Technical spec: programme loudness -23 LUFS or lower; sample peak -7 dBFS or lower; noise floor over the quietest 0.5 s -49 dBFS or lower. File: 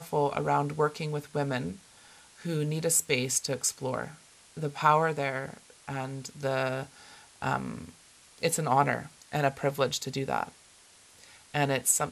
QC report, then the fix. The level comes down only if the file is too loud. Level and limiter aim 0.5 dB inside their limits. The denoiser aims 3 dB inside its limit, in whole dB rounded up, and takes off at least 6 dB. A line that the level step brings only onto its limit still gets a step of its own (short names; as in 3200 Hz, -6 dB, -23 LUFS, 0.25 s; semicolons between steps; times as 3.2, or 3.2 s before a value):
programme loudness -29.5 LUFS: OK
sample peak -8.5 dBFS: OK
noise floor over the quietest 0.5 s -57 dBFS: OK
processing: none